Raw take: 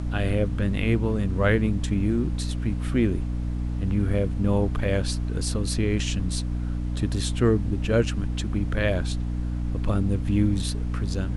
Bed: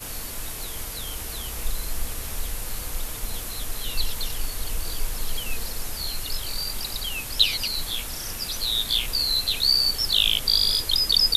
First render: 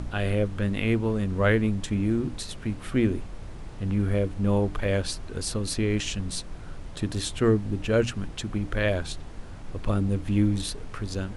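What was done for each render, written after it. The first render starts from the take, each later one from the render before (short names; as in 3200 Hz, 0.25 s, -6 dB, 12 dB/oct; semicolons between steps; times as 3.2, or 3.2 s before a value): notches 60/120/180/240/300 Hz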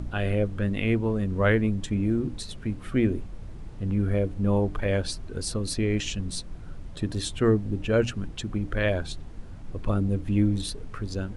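denoiser 7 dB, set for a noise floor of -40 dBFS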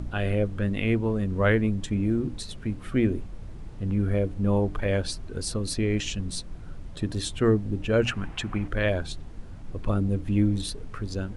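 8.05–8.68 band shelf 1400 Hz +10 dB 2.3 oct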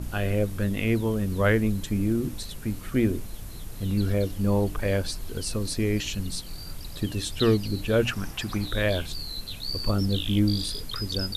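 add bed -13.5 dB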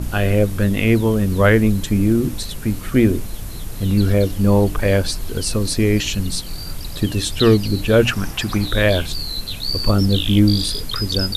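gain +9 dB; limiter -3 dBFS, peak gain reduction 2 dB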